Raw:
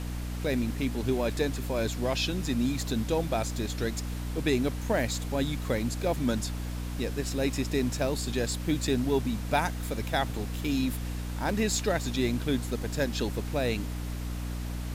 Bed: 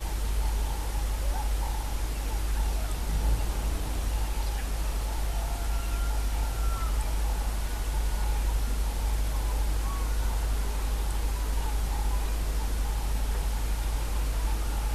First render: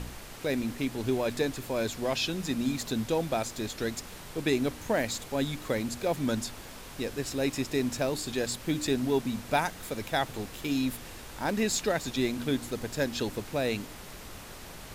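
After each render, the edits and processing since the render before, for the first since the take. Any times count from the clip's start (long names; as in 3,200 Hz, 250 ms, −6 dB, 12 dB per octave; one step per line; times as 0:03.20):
hum removal 60 Hz, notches 5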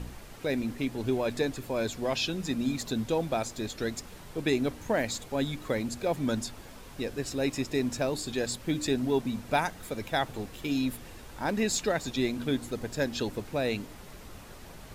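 broadband denoise 6 dB, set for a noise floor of −45 dBFS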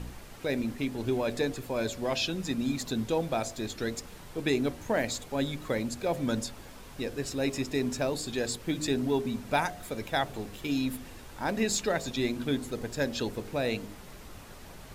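hum removal 51.24 Hz, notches 14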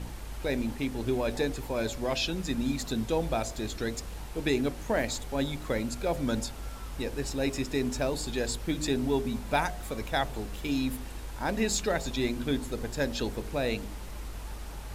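mix in bed −12 dB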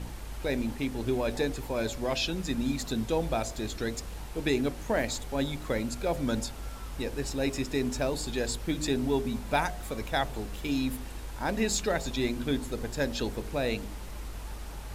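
no processing that can be heard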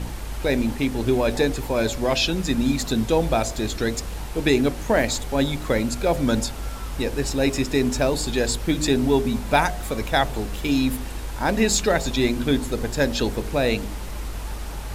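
level +8.5 dB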